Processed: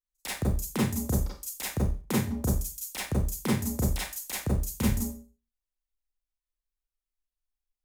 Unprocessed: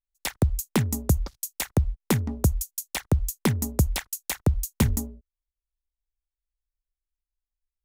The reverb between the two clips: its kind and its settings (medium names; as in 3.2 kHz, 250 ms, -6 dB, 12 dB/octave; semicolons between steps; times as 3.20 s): Schroeder reverb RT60 0.34 s, combs from 30 ms, DRR -7 dB; trim -10.5 dB